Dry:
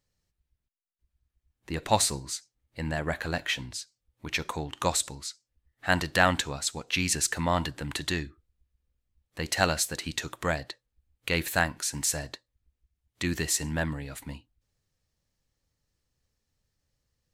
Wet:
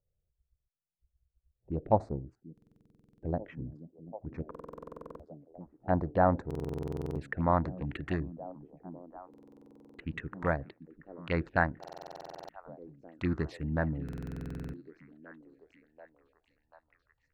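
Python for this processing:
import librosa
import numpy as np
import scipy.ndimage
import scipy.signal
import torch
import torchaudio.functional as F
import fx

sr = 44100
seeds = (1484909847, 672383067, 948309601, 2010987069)

p1 = fx.wiener(x, sr, points=41)
p2 = fx.filter_sweep_lowpass(p1, sr, from_hz=650.0, to_hz=1800.0, start_s=5.75, end_s=7.87, q=1.1)
p3 = fx.env_phaser(p2, sr, low_hz=260.0, high_hz=3000.0, full_db=-27.0)
p4 = p3 + fx.echo_stepped(p3, sr, ms=738, hz=220.0, octaves=0.7, feedback_pct=70, wet_db=-11.5, dry=0)
y = fx.buffer_glitch(p4, sr, at_s=(2.53, 4.5, 6.46, 9.29, 11.79, 14.04), block=2048, repeats=14)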